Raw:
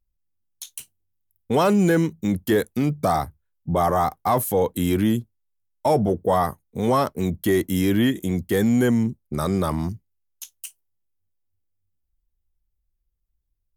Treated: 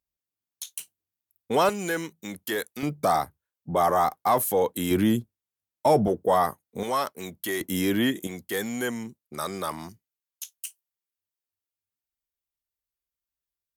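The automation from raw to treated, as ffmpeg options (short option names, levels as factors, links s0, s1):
-af "asetnsamples=n=441:p=0,asendcmd='1.69 highpass f 1300;2.83 highpass f 400;4.91 highpass f 150;6.08 highpass f 370;6.83 highpass f 1300;7.61 highpass f 350;8.27 highpass f 1100',highpass=f=450:p=1"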